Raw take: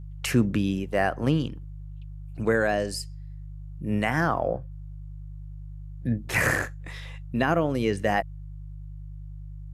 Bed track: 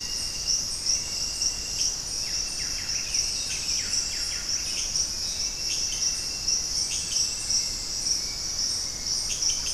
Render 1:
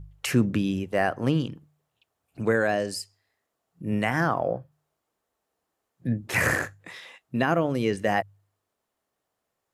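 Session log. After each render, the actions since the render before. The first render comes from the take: de-hum 50 Hz, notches 3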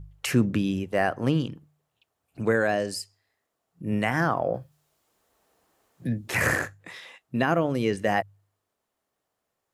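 4.54–6.41 three-band squash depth 40%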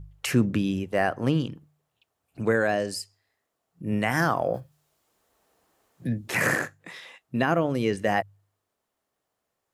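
4.09–4.59 high shelf 4900 Hz -> 2900 Hz +12 dB; 6.31–7 resonant low shelf 110 Hz -12.5 dB, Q 1.5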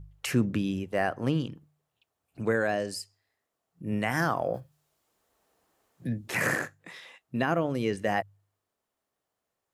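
gain -3.5 dB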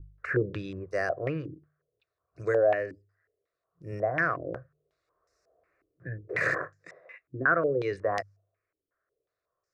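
fixed phaser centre 860 Hz, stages 6; stepped low-pass 5.5 Hz 300–5400 Hz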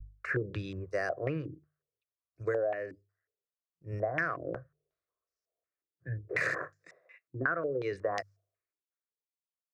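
compressor 12:1, threshold -29 dBFS, peak gain reduction 11 dB; three-band expander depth 70%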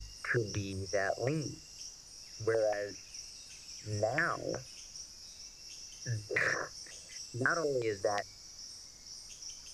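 add bed track -21 dB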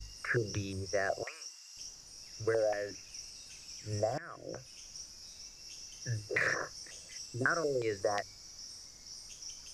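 1.23–1.77 HPF 880 Hz 24 dB/oct; 4.18–4.91 fade in, from -21.5 dB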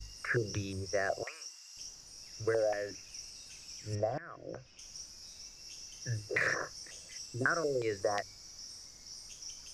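3.95–4.79 air absorption 180 m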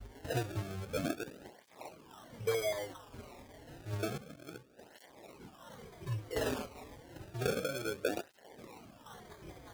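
decimation with a swept rate 31×, swing 100% 0.29 Hz; tape flanging out of phase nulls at 0.3 Hz, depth 6.4 ms

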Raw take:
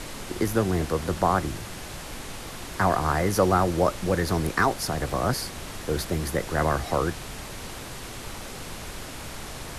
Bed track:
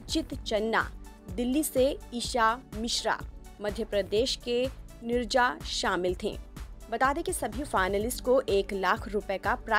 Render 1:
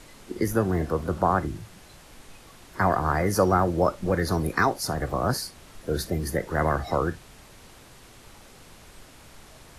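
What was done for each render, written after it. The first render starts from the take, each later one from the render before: noise print and reduce 12 dB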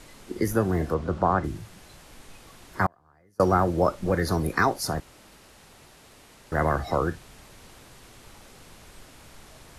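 0.94–1.44 air absorption 81 m; 2.86–3.4 flipped gate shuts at -19 dBFS, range -36 dB; 5–6.52 room tone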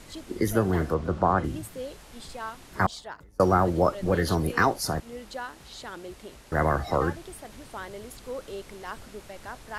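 add bed track -12 dB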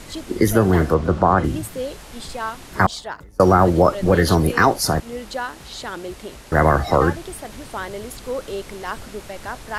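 gain +9 dB; limiter -3 dBFS, peak gain reduction 3 dB

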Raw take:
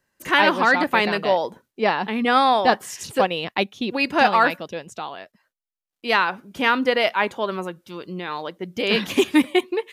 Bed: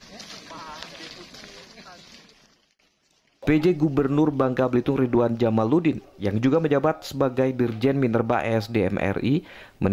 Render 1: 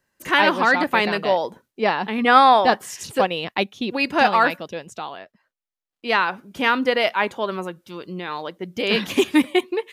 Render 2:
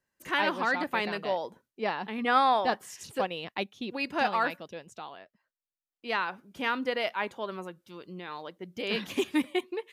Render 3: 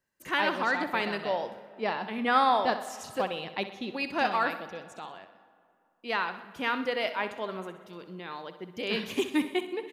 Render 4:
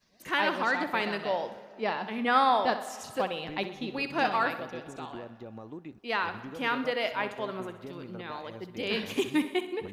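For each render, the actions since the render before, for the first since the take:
2.18–2.65 bell 1200 Hz +5.5 dB 2.2 oct; 5.17–6.22 LPF 2900 Hz -> 5400 Hz 6 dB/oct
gain -10.5 dB
feedback echo 63 ms, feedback 50%, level -12 dB; digital reverb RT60 2.6 s, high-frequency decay 0.55×, pre-delay 50 ms, DRR 17 dB
add bed -23 dB

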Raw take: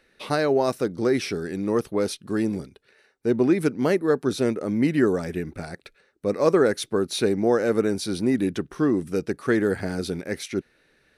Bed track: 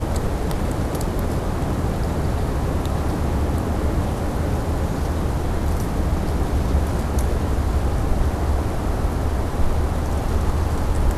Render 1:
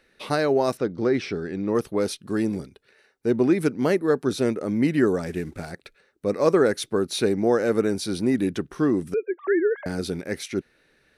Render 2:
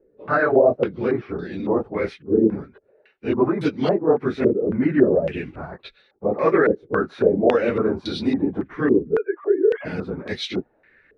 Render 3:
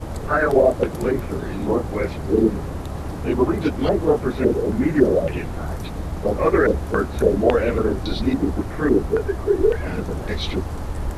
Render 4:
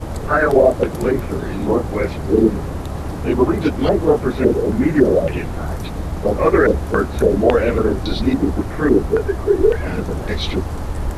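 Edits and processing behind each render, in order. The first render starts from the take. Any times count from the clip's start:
0.77–1.75 air absorption 130 m; 5.26–5.72 CVSD 64 kbps; 9.14–9.86 sine-wave speech
phase scrambler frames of 50 ms; stepped low-pass 3.6 Hz 440–3700 Hz
add bed track -7 dB
gain +3.5 dB; limiter -2 dBFS, peak gain reduction 2.5 dB

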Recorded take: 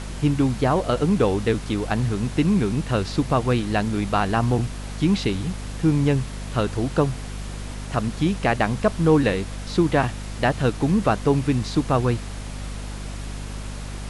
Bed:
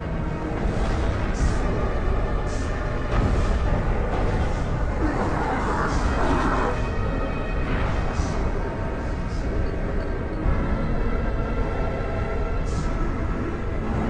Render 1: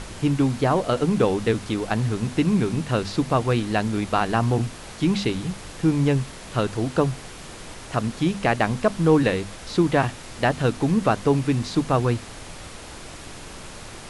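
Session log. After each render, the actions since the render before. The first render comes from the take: notches 50/100/150/200/250 Hz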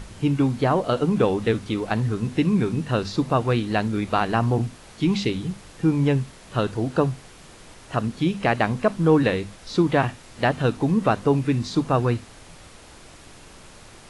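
noise print and reduce 7 dB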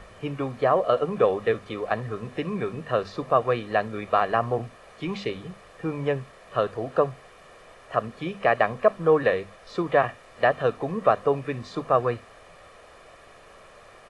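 three-band isolator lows -14 dB, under 300 Hz, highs -14 dB, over 2500 Hz; comb 1.7 ms, depth 55%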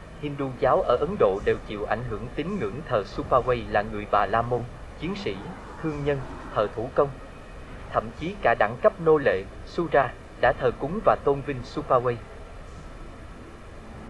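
add bed -17 dB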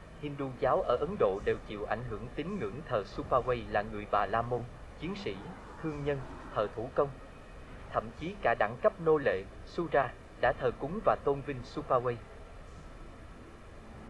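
gain -7.5 dB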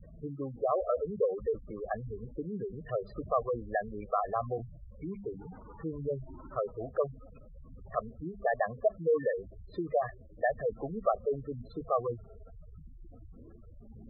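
spectral gate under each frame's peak -10 dB strong; dynamic EQ 1700 Hz, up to +4 dB, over -57 dBFS, Q 5.8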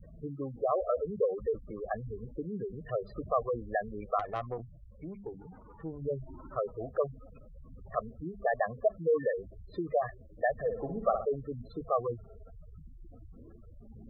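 4.19–6.02 tube stage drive 26 dB, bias 0.65; 10.55–11.25 flutter echo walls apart 10.2 m, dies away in 0.49 s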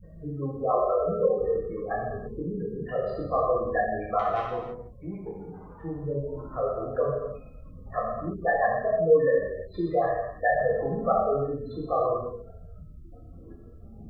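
non-linear reverb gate 0.36 s falling, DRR -6 dB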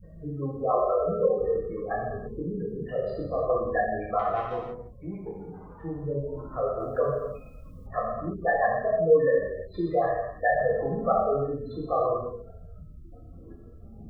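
2.72–3.5 band shelf 1100 Hz -10.5 dB 1.3 oct; 4.11–4.51 LPF 2100 Hz 6 dB/oct; 6.8–7.87 high shelf 2300 Hz +10.5 dB

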